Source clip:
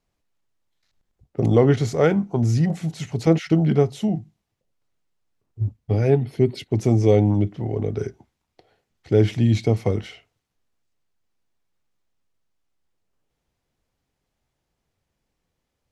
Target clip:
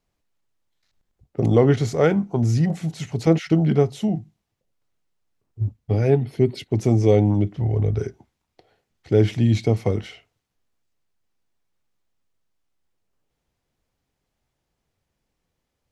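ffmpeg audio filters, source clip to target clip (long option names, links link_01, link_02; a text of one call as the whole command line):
ffmpeg -i in.wav -filter_complex "[0:a]asplit=3[link_01][link_02][link_03];[link_01]afade=type=out:start_time=7.56:duration=0.02[link_04];[link_02]asubboost=boost=4.5:cutoff=110,afade=type=in:start_time=7.56:duration=0.02,afade=type=out:start_time=7.99:duration=0.02[link_05];[link_03]afade=type=in:start_time=7.99:duration=0.02[link_06];[link_04][link_05][link_06]amix=inputs=3:normalize=0" out.wav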